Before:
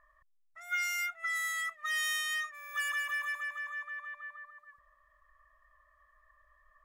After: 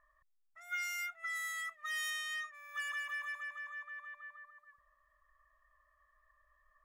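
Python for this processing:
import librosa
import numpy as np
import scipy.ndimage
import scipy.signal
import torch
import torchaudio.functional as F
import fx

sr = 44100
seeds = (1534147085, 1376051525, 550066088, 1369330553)

y = fx.high_shelf(x, sr, hz=11000.0, db=-11.0, at=(2.1, 3.95))
y = y * librosa.db_to_amplitude(-5.5)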